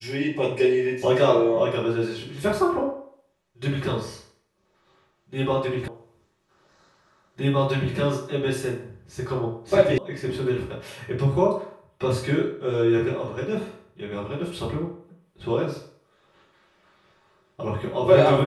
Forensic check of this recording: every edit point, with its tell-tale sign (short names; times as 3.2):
5.88 sound cut off
9.98 sound cut off